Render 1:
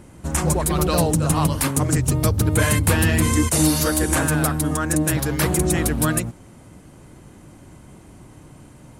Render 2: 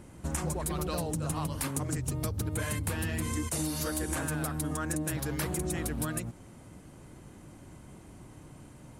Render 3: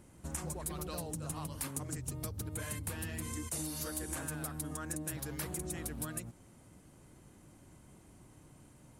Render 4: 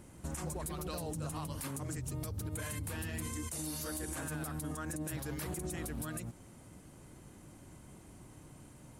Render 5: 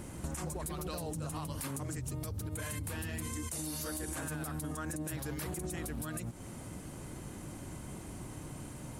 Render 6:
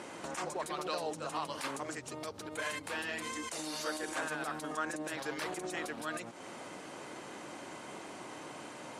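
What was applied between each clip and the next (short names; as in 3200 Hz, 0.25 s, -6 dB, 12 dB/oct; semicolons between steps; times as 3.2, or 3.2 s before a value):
compressor, threshold -24 dBFS, peak gain reduction 11 dB; gain -5.5 dB
high shelf 5700 Hz +6 dB; gain -8.5 dB
limiter -34.5 dBFS, peak gain reduction 10 dB; gain +4 dB
compressor 5:1, threshold -46 dBFS, peak gain reduction 10 dB; gain +9.5 dB
BPF 480–4900 Hz; gain +7.5 dB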